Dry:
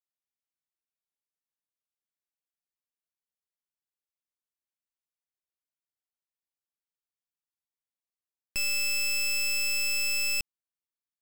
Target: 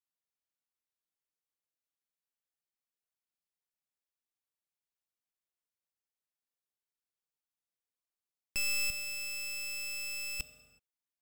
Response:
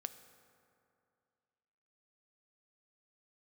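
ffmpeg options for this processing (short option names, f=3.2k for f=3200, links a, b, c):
-filter_complex "[0:a]asettb=1/sr,asplit=3[a][b][c];[a]atrim=end=8.904[d];[b]atrim=start=8.9:end=10.4,asetpts=PTS-STARTPTS,afade=t=in:d=0.004:c=qsin,afade=t=out:st=1.496:d=0.004:c=qsin,acrusher=bits=5:dc=4:mix=0:aa=0.000001[e];[c]atrim=start=10.396[f];[d][e]acrossfade=d=0.004:c1=hsin:c2=qsin[g];[g][f]acrossfade=d=0.004:c1=qsin:c2=hsin[h];[1:a]atrim=start_sample=2205,afade=t=out:st=0.43:d=0.01,atrim=end_sample=19404[i];[h][i]afir=irnorm=-1:irlink=0"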